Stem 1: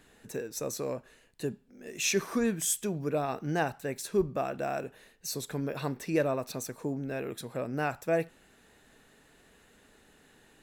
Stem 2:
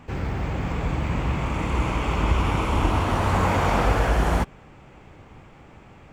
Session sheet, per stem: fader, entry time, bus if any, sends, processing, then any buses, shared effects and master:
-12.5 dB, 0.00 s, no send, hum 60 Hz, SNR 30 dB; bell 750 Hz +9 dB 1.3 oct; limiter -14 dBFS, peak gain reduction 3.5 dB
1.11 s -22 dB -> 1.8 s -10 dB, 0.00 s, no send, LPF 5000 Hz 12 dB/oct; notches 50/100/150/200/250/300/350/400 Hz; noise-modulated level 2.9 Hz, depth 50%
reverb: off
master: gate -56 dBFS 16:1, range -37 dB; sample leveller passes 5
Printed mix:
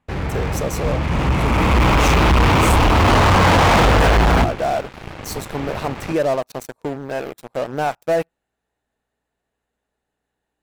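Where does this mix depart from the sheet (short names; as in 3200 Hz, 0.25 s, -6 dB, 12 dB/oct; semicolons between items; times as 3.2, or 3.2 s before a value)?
stem 2 -22.0 dB -> -10.5 dB; master: missing gate -56 dBFS 16:1, range -37 dB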